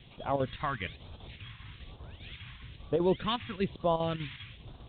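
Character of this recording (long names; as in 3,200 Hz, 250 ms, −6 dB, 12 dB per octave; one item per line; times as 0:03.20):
chopped level 5 Hz, depth 60%, duty 80%
a quantiser's noise floor 8 bits, dither triangular
phaser sweep stages 2, 1.1 Hz, lowest notch 490–2,000 Hz
A-law companding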